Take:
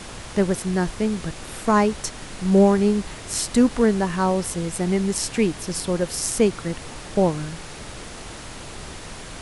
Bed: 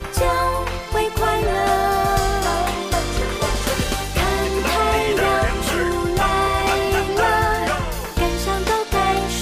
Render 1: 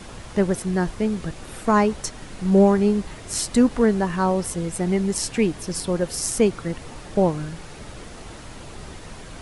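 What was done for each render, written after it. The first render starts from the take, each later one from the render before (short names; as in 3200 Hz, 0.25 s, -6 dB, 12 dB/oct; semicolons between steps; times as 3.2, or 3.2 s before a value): denoiser 6 dB, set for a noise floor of -38 dBFS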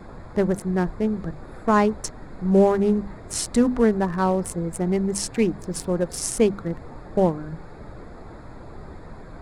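Wiener smoothing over 15 samples; notches 50/100/150/200/250 Hz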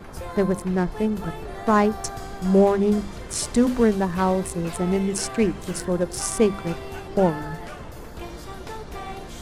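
add bed -17.5 dB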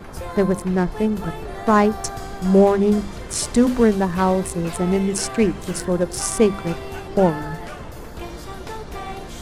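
gain +3 dB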